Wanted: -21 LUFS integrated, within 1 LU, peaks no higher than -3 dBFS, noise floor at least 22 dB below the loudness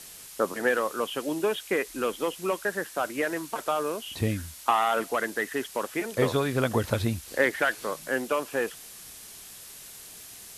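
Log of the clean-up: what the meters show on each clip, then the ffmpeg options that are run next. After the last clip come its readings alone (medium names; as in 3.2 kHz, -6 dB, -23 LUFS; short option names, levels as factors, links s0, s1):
noise floor -46 dBFS; noise floor target -51 dBFS; loudness -28.5 LUFS; peak level -9.5 dBFS; loudness target -21.0 LUFS
-> -af "afftdn=nr=6:nf=-46"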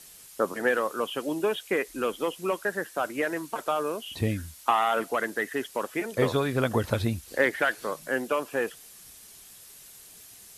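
noise floor -50 dBFS; noise floor target -51 dBFS
-> -af "afftdn=nr=6:nf=-50"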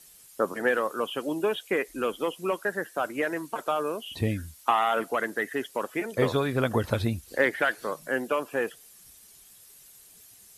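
noise floor -53 dBFS; loudness -28.5 LUFS; peak level -9.0 dBFS; loudness target -21.0 LUFS
-> -af "volume=2.37,alimiter=limit=0.708:level=0:latency=1"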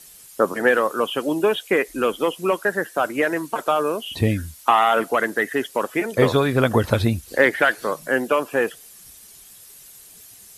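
loudness -21.0 LUFS; peak level -3.0 dBFS; noise floor -46 dBFS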